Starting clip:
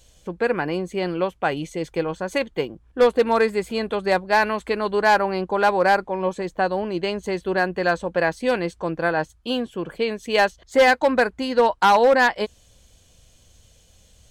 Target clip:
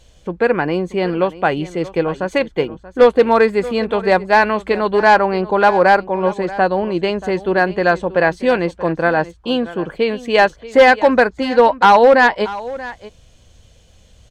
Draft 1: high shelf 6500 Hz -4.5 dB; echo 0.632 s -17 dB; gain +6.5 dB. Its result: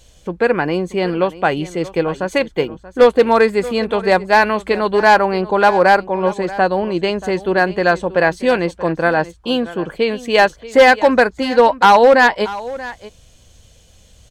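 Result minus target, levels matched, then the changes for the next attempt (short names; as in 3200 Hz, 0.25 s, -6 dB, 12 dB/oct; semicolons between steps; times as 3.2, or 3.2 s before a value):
8000 Hz band +5.0 dB
change: high shelf 6500 Hz -14.5 dB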